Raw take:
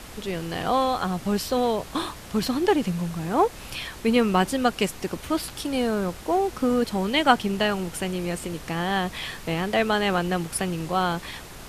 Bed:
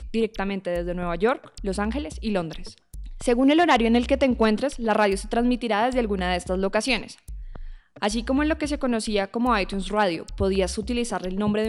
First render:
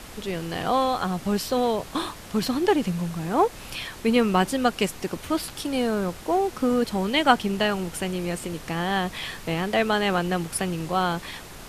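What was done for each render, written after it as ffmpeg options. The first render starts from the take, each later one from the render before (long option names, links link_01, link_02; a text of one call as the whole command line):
ffmpeg -i in.wav -af "bandreject=frequency=60:width_type=h:width=4,bandreject=frequency=120:width_type=h:width=4" out.wav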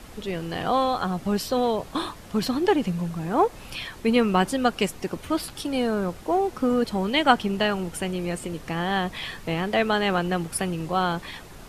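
ffmpeg -i in.wav -af "afftdn=noise_reduction=6:noise_floor=-42" out.wav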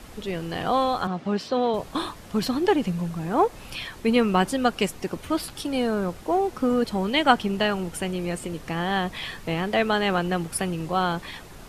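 ffmpeg -i in.wav -filter_complex "[0:a]asettb=1/sr,asplit=3[link_01][link_02][link_03];[link_01]atrim=end=1.074[link_04];[link_02]atrim=start=1.07:end=1.74,asetpts=PTS-STARTPTS,afade=type=in:duration=0.004:curve=qsin,afade=type=out:start_time=0.666:duration=0.004:curve=qsin,highpass=160,lowpass=4200[link_05];[link_03]atrim=start=1.736[link_06];[link_04][link_05]acrossfade=duration=0.004:curve1=hsin:curve2=qsin[link_07];[link_07][link_06]acrossfade=duration=0.004:curve1=qsin:curve2=hsin" out.wav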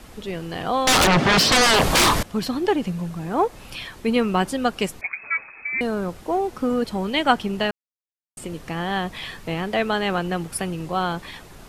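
ffmpeg -i in.wav -filter_complex "[0:a]asettb=1/sr,asplit=3[link_01][link_02][link_03];[link_01]atrim=end=0.874[link_04];[link_02]atrim=start=0.87:end=2.23,asetpts=PTS-STARTPTS,afade=type=in:duration=0.004:curve=qsin,afade=type=out:start_time=1.356:duration=0.004:curve=qsin,aeval=exprs='0.237*sin(PI/2*8.91*val(0)/0.237)':channel_layout=same[link_05];[link_03]atrim=start=2.226[link_06];[link_04][link_05]acrossfade=duration=0.004:curve1=hsin:curve2=qsin[link_07];[link_07][link_06]acrossfade=duration=0.004:curve1=qsin:curve2=hsin,asettb=1/sr,asplit=3[link_08][link_09][link_10];[link_08]atrim=end=5.014[link_11];[link_09]atrim=start=5.01:end=5.81,asetpts=PTS-STARTPTS,afade=type=in:duration=0.004:curve=qsin,afade=type=out:start_time=0.796:duration=0.004:curve=qsin,lowpass=frequency=2200:width_type=q:width=0.5098,lowpass=frequency=2200:width_type=q:width=0.6013,lowpass=frequency=2200:width_type=q:width=0.9,lowpass=frequency=2200:width_type=q:width=2.563,afreqshift=-2600[link_12];[link_10]atrim=start=5.806[link_13];[link_11][link_12]acrossfade=duration=0.004:curve1=hsin:curve2=qsin[link_14];[link_14][link_13]acrossfade=duration=0.004:curve1=qsin:curve2=hsin,asplit=3[link_15][link_16][link_17];[link_15]atrim=end=7.71,asetpts=PTS-STARTPTS,afade=type=out:start_time=7.706:duration=0.004:curve=hsin[link_18];[link_16]atrim=start=7.71:end=8.37,asetpts=PTS-STARTPTS,volume=0[link_19];[link_17]atrim=start=8.37,asetpts=PTS-STARTPTS,afade=type=in:duration=0.004:curve=hsin[link_20];[link_18][link_19][link_20]concat=n=3:v=0:a=1" out.wav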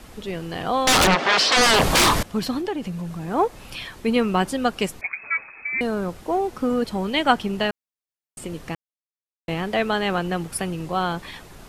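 ffmpeg -i in.wav -filter_complex "[0:a]asplit=3[link_01][link_02][link_03];[link_01]afade=type=out:start_time=1.14:duration=0.02[link_04];[link_02]highpass=480,lowpass=6400,afade=type=in:start_time=1.14:duration=0.02,afade=type=out:start_time=1.56:duration=0.02[link_05];[link_03]afade=type=in:start_time=1.56:duration=0.02[link_06];[link_04][link_05][link_06]amix=inputs=3:normalize=0,asettb=1/sr,asplit=3[link_07][link_08][link_09];[link_07]atrim=end=2.614[link_10];[link_08]atrim=start=2.61:end=3.28,asetpts=PTS-STARTPTS,afade=type=in:duration=0.004:curve=qsin,afade=type=out:start_time=0.666:duration=0.004:curve=qsin,acompressor=threshold=-28dB:ratio=2:attack=3.2:release=140:knee=1:detection=peak[link_11];[link_09]atrim=start=3.276[link_12];[link_10][link_11]acrossfade=duration=0.004:curve1=hsin:curve2=qsin[link_13];[link_13][link_12]acrossfade=duration=0.004:curve1=qsin:curve2=hsin,asplit=3[link_14][link_15][link_16];[link_14]atrim=end=8.75,asetpts=PTS-STARTPTS,afade=type=out:start_time=8.746:duration=0.004:curve=hsin[link_17];[link_15]atrim=start=8.75:end=9.48,asetpts=PTS-STARTPTS,volume=0[link_18];[link_16]atrim=start=9.48,asetpts=PTS-STARTPTS,afade=type=in:duration=0.004:curve=hsin[link_19];[link_17][link_18][link_19]concat=n=3:v=0:a=1" out.wav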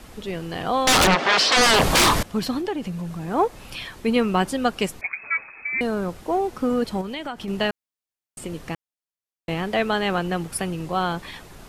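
ffmpeg -i in.wav -filter_complex "[0:a]asettb=1/sr,asplit=3[link_01][link_02][link_03];[link_01]atrim=end=7.014[link_04];[link_02]atrim=start=7.01:end=7.48,asetpts=PTS-STARTPTS,afade=type=in:duration=0.004:curve=qsin,afade=type=out:start_time=0.466:duration=0.004:curve=qsin,acompressor=threshold=-28dB:ratio=6:attack=3.2:release=140:knee=1:detection=peak[link_05];[link_03]atrim=start=7.476[link_06];[link_04][link_05]acrossfade=duration=0.004:curve1=hsin:curve2=qsin[link_07];[link_07][link_06]acrossfade=duration=0.004:curve1=qsin:curve2=hsin" out.wav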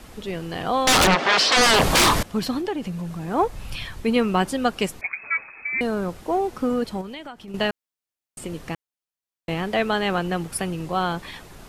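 ffmpeg -i in.wav -filter_complex "[0:a]asplit=3[link_01][link_02][link_03];[link_01]afade=type=out:start_time=3.41:duration=0.02[link_04];[link_02]asubboost=boost=4:cutoff=150,afade=type=in:start_time=3.41:duration=0.02,afade=type=out:start_time=4.02:duration=0.02[link_05];[link_03]afade=type=in:start_time=4.02:duration=0.02[link_06];[link_04][link_05][link_06]amix=inputs=3:normalize=0,asplit=2[link_07][link_08];[link_07]atrim=end=7.54,asetpts=PTS-STARTPTS,afade=type=out:start_time=6.59:duration=0.95:silence=0.298538[link_09];[link_08]atrim=start=7.54,asetpts=PTS-STARTPTS,afade=type=in:duration=0.004:curve=hsin:silence=0.298538[link_10];[link_09][link_10]concat=n=2:v=0:a=1" out.wav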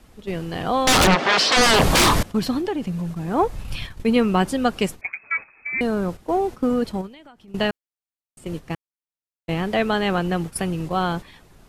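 ffmpeg -i in.wav -af "lowshelf=frequency=330:gain=4.5,agate=range=-10dB:threshold=-29dB:ratio=16:detection=peak" out.wav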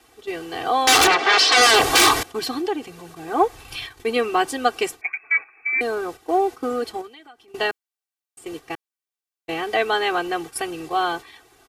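ffmpeg -i in.wav -af "highpass=frequency=530:poles=1,aecho=1:1:2.6:0.97" out.wav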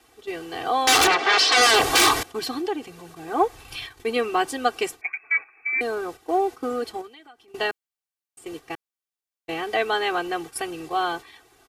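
ffmpeg -i in.wav -af "volume=-2.5dB" out.wav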